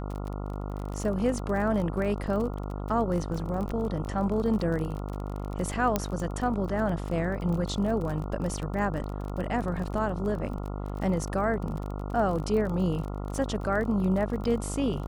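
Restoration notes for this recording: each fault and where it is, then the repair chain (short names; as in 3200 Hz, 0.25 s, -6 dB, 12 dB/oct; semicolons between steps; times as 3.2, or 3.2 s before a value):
buzz 50 Hz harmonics 28 -34 dBFS
crackle 32/s -33 dBFS
5.96 pop -10 dBFS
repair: de-click; de-hum 50 Hz, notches 28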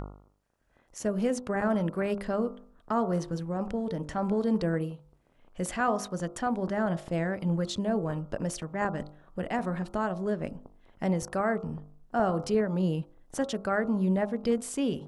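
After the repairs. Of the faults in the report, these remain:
none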